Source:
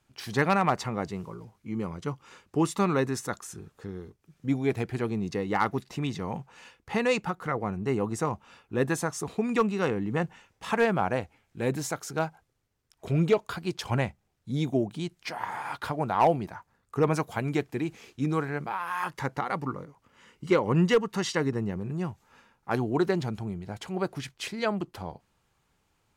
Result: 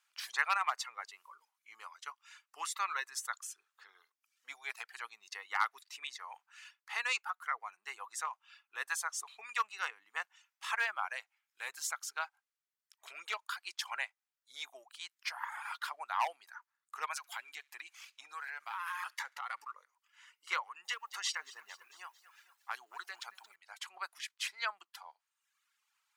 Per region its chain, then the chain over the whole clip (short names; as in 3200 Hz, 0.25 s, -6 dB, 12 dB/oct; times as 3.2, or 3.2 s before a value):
17.17–19.74 sample leveller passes 1 + compressor 10:1, threshold -28 dBFS + thin delay 69 ms, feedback 34%, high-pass 1800 Hz, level -15.5 dB
20.62–23.56 compressor 10:1, threshold -25 dBFS + lo-fi delay 0.225 s, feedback 55%, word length 9-bit, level -12.5 dB
whole clip: reverb removal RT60 0.94 s; HPF 1100 Hz 24 dB/oct; gain -1.5 dB